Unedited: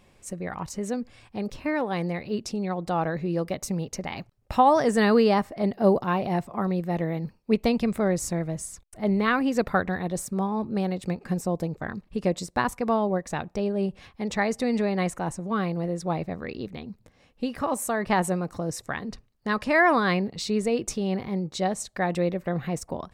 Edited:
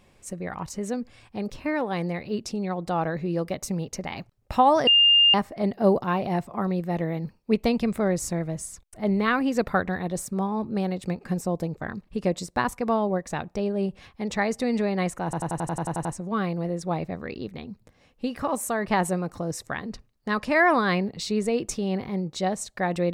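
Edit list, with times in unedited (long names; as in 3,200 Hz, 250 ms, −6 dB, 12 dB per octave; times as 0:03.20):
0:04.87–0:05.34: beep over 2,810 Hz −13.5 dBFS
0:15.24: stutter 0.09 s, 10 plays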